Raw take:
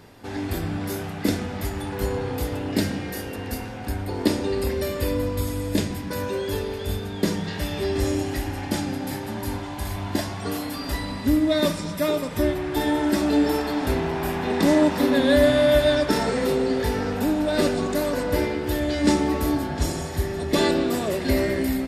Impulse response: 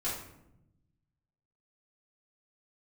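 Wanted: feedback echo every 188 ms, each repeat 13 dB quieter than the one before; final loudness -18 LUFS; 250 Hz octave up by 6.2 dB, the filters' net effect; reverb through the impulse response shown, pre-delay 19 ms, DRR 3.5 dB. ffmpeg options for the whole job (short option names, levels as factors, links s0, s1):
-filter_complex "[0:a]equalizer=f=250:t=o:g=7.5,aecho=1:1:188|376|564:0.224|0.0493|0.0108,asplit=2[s0][s1];[1:a]atrim=start_sample=2205,adelay=19[s2];[s1][s2]afir=irnorm=-1:irlink=0,volume=0.376[s3];[s0][s3]amix=inputs=2:normalize=0"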